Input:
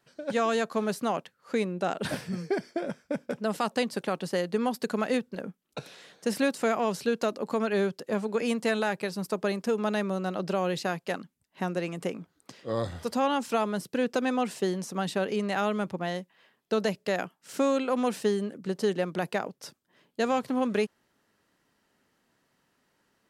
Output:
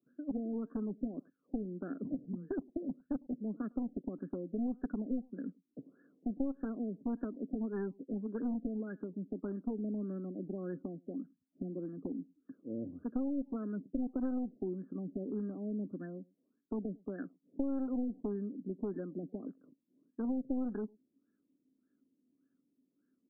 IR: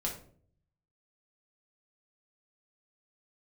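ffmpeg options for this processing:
-filter_complex "[0:a]asplit=3[link_01][link_02][link_03];[link_01]bandpass=frequency=270:width_type=q:width=8,volume=0dB[link_04];[link_02]bandpass=frequency=2290:width_type=q:width=8,volume=-6dB[link_05];[link_03]bandpass=frequency=3010:width_type=q:width=8,volume=-9dB[link_06];[link_04][link_05][link_06]amix=inputs=3:normalize=0,aresample=11025,aeval=exprs='clip(val(0),-1,0.0126)':channel_layout=same,aresample=44100,acompressor=threshold=-38dB:ratio=6,asplit=2[link_07][link_08];[link_08]adelay=105,volume=-26dB,highshelf=frequency=4000:gain=-2.36[link_09];[link_07][link_09]amix=inputs=2:normalize=0,afftfilt=real='re*lt(b*sr/1024,710*pow(1800/710,0.5+0.5*sin(2*PI*1.7*pts/sr)))':imag='im*lt(b*sr/1024,710*pow(1800/710,0.5+0.5*sin(2*PI*1.7*pts/sr)))':win_size=1024:overlap=0.75,volume=7dB"

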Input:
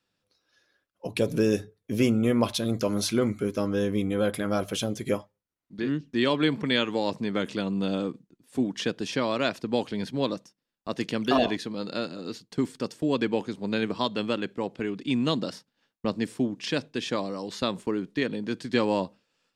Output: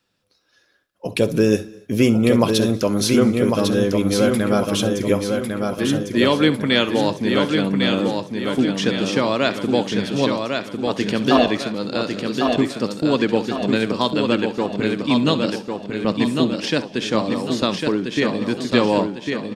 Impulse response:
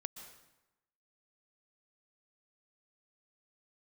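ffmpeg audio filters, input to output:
-filter_complex "[0:a]aecho=1:1:1101|2202|3303|4404|5505|6606:0.596|0.268|0.121|0.0543|0.0244|0.011,asplit=2[link_01][link_02];[1:a]atrim=start_sample=2205,afade=type=out:start_time=0.28:duration=0.01,atrim=end_sample=12789,adelay=65[link_03];[link_02][link_03]afir=irnorm=-1:irlink=0,volume=-12.5dB[link_04];[link_01][link_04]amix=inputs=2:normalize=0,volume=7dB"

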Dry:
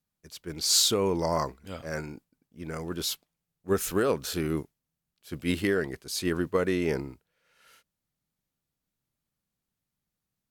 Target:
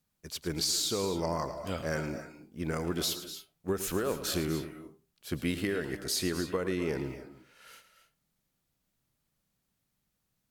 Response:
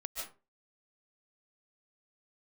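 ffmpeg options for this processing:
-filter_complex "[0:a]acompressor=threshold=-33dB:ratio=10,asplit=2[link_01][link_02];[1:a]atrim=start_sample=2205,adelay=109[link_03];[link_02][link_03]afir=irnorm=-1:irlink=0,volume=-8.5dB[link_04];[link_01][link_04]amix=inputs=2:normalize=0,volume=5dB"

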